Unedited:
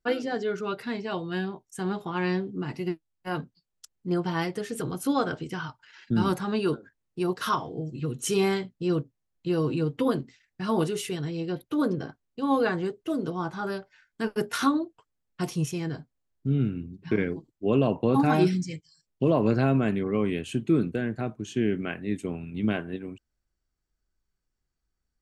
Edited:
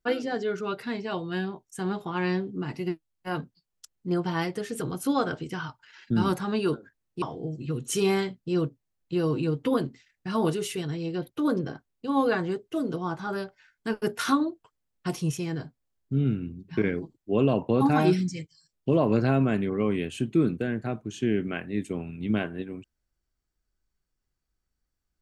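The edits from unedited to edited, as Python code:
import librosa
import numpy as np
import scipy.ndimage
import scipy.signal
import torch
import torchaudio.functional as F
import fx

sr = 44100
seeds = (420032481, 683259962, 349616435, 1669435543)

y = fx.edit(x, sr, fx.cut(start_s=7.22, length_s=0.34), tone=tone)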